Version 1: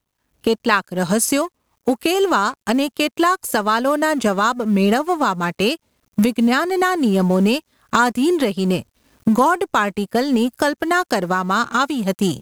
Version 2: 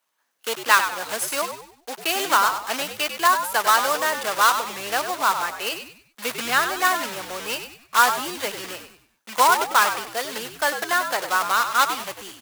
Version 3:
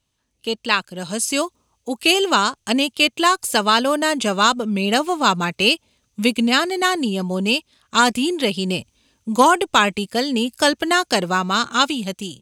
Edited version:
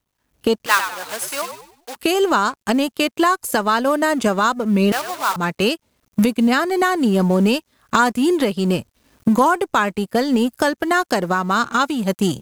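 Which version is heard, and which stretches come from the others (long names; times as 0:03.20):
1
0:00.66–0:01.96: punch in from 2
0:04.92–0:05.36: punch in from 2
not used: 3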